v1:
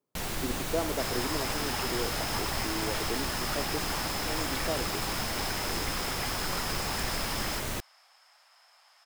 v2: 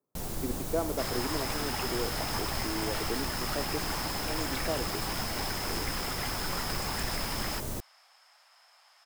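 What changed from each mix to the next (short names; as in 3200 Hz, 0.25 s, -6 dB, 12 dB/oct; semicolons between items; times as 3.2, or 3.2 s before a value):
first sound: add bell 2300 Hz -12 dB 2.4 oct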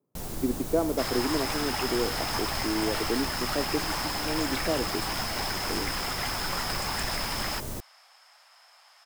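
speech: add low shelf 450 Hz +11.5 dB; second sound +4.0 dB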